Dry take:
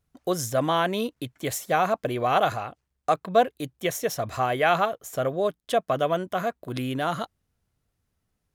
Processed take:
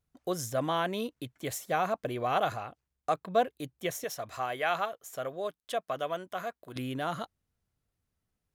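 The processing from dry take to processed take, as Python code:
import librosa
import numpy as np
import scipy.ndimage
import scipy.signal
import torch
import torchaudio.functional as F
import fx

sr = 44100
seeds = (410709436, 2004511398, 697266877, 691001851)

y = fx.low_shelf(x, sr, hz=400.0, db=-10.0, at=(4.04, 6.76))
y = y * librosa.db_to_amplitude(-6.5)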